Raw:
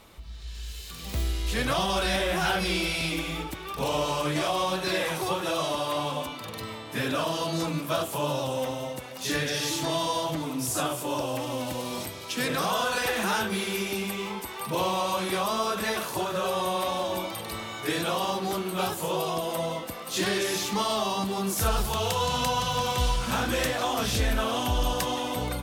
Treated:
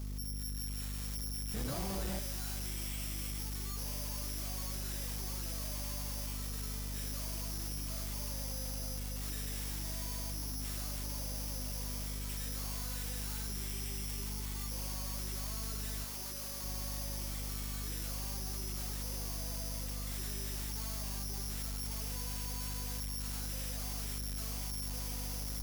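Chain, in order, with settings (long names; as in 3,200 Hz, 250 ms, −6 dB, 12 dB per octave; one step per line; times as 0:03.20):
bad sample-rate conversion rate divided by 8×, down none, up zero stuff
0:01.54–0:02.19: low-shelf EQ 370 Hz +11 dB
mains hum 50 Hz, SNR 11 dB
soft clipping −26 dBFS, distortion 1 dB
0:16.04–0:16.64: low-shelf EQ 180 Hz −9.5 dB
level −8 dB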